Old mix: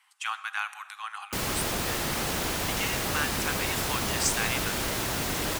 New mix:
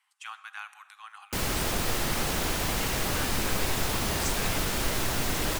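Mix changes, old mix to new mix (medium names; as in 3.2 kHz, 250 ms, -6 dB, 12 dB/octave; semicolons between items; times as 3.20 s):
speech -9.0 dB; background: remove high-pass 68 Hz 6 dB/octave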